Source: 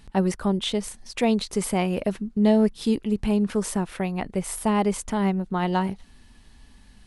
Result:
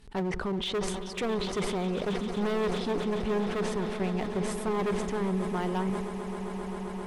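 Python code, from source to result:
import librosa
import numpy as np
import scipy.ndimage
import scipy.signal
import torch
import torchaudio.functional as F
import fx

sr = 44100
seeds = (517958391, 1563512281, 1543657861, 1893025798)

p1 = fx.env_lowpass_down(x, sr, base_hz=1500.0, full_db=-17.0)
p2 = fx.peak_eq(p1, sr, hz=420.0, db=10.0, octaves=0.25)
p3 = fx.level_steps(p2, sr, step_db=17)
p4 = p2 + (p3 * 10.0 ** (-1.0 / 20.0))
p5 = np.clip(p4, -10.0 ** (-19.0 / 20.0), 10.0 ** (-19.0 / 20.0))
p6 = p5 + fx.echo_swell(p5, sr, ms=132, loudest=8, wet_db=-16.5, dry=0)
p7 = fx.sustainer(p6, sr, db_per_s=35.0)
y = p7 * 10.0 ** (-8.0 / 20.0)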